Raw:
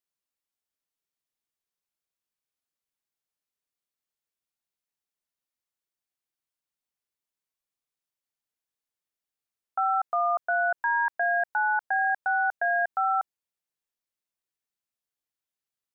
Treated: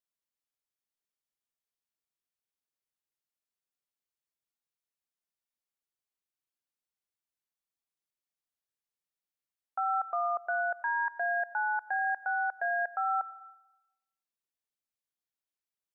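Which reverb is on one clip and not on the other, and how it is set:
comb and all-pass reverb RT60 0.94 s, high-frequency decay 0.9×, pre-delay 55 ms, DRR 16.5 dB
level −5.5 dB

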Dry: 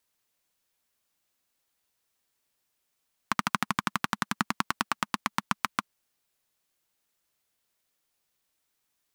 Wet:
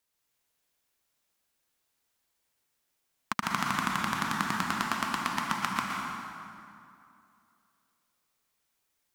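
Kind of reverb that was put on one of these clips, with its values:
dense smooth reverb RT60 2.6 s, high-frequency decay 0.65×, pre-delay 105 ms, DRR −2 dB
level −3.5 dB

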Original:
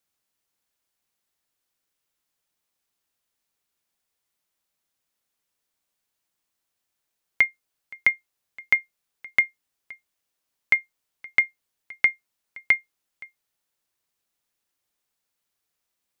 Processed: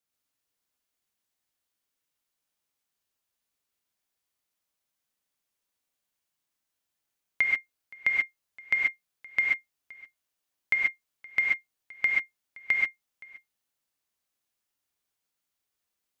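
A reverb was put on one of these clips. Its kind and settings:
reverb whose tail is shaped and stops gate 160 ms rising, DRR −1 dB
level −7 dB

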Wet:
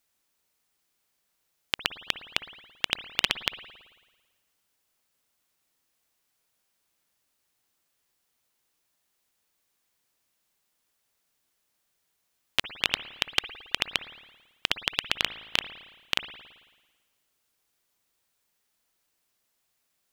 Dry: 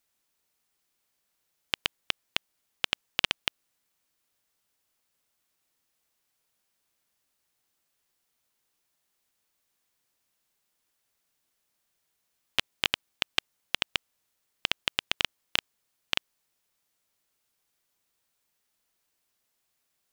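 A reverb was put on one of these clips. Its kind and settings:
spring reverb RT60 1.3 s, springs 55 ms, chirp 60 ms, DRR 11.5 dB
level +1.5 dB

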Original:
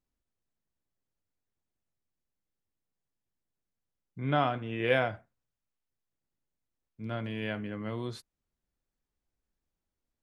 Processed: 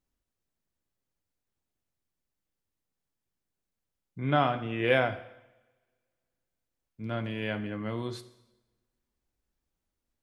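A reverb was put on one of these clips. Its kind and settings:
coupled-rooms reverb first 0.91 s, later 2.3 s, from −26 dB, DRR 11.5 dB
level +2 dB

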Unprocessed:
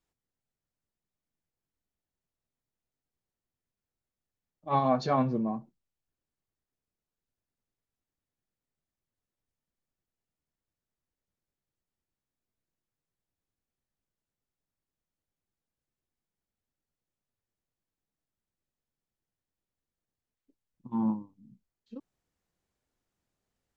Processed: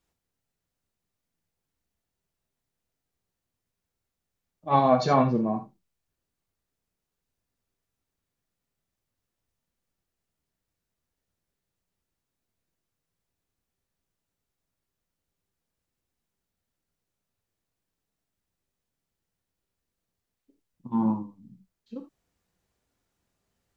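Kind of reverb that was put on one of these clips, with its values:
reverb whose tail is shaped and stops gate 100 ms flat, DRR 5 dB
level +5 dB

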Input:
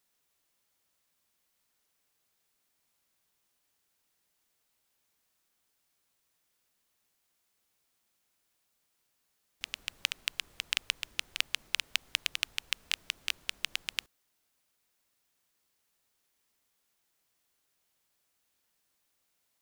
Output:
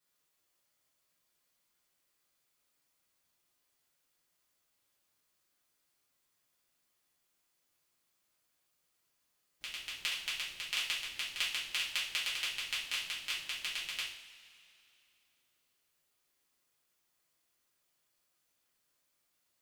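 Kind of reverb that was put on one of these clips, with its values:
coupled-rooms reverb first 0.53 s, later 2.8 s, from −18 dB, DRR −9.5 dB
level −11 dB

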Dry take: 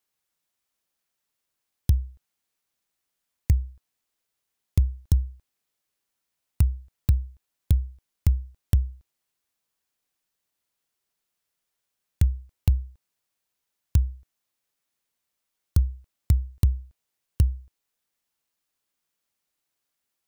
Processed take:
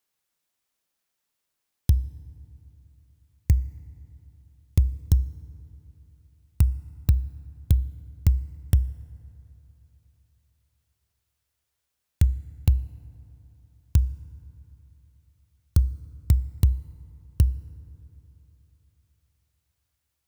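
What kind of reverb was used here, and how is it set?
feedback delay network reverb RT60 3.4 s, high-frequency decay 0.4×, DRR 17.5 dB
level +1 dB

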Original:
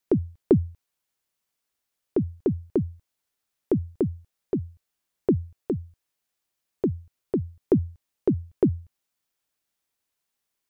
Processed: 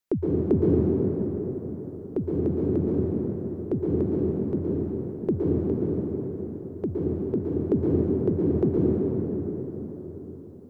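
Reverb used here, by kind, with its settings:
dense smooth reverb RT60 4.8 s, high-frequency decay 0.5×, pre-delay 105 ms, DRR −6 dB
level −4.5 dB

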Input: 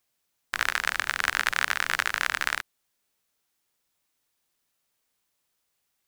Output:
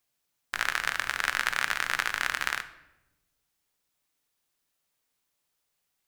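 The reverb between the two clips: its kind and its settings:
rectangular room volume 360 cubic metres, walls mixed, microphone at 0.37 metres
level −2.5 dB

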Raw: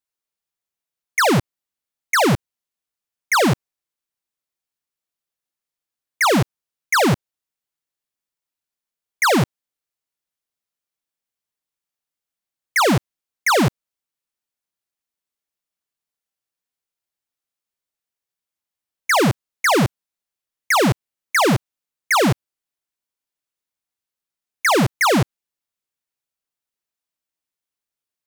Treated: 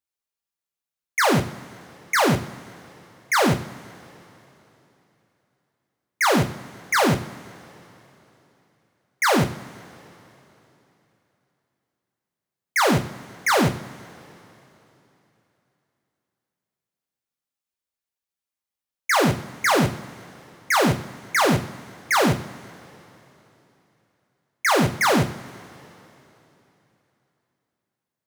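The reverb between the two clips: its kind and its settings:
coupled-rooms reverb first 0.4 s, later 3.3 s, from −20 dB, DRR 4 dB
level −4 dB

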